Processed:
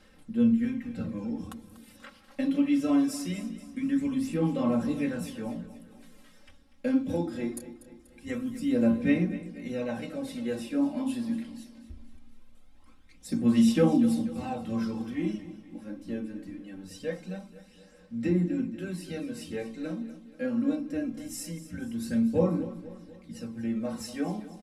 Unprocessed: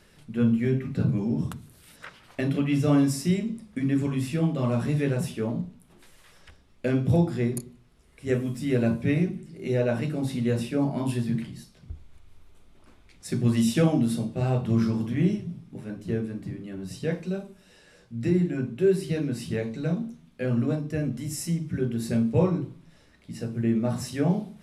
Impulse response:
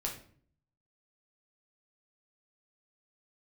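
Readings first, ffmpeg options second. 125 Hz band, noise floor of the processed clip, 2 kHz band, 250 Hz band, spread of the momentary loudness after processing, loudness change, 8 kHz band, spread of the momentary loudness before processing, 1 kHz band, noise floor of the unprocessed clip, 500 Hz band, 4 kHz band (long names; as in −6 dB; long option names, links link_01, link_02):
−11.0 dB, −55 dBFS, −4.0 dB, −1.0 dB, 18 LU, −3.0 dB, −4.0 dB, 15 LU, −2.5 dB, −57 dBFS, −5.0 dB, −3.5 dB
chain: -af "aphaser=in_gain=1:out_gain=1:delay=3.6:decay=0.47:speed=0.22:type=sinusoidal,bandreject=frequency=50:width_type=h:width=6,bandreject=frequency=100:width_type=h:width=6,bandreject=frequency=150:width_type=h:width=6,aecho=1:1:3.8:0.91,aecho=1:1:242|484|726|968|1210:0.178|0.0889|0.0445|0.0222|0.0111,volume=-8dB"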